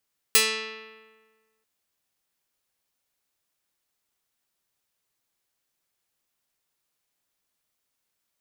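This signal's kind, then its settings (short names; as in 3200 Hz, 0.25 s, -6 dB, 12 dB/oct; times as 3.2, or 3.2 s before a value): plucked string A3, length 1.29 s, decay 1.50 s, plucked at 0.29, medium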